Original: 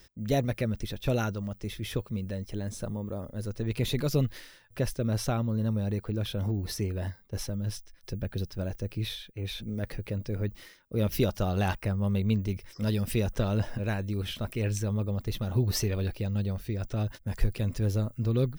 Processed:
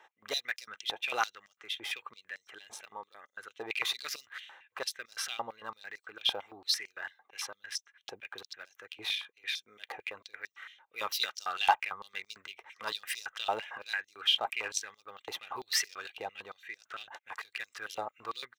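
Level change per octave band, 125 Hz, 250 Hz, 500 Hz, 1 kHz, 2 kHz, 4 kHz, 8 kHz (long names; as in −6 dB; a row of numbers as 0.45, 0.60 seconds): below −35 dB, −26.0 dB, −11.5 dB, +5.5 dB, +5.5 dB, +7.0 dB, +1.0 dB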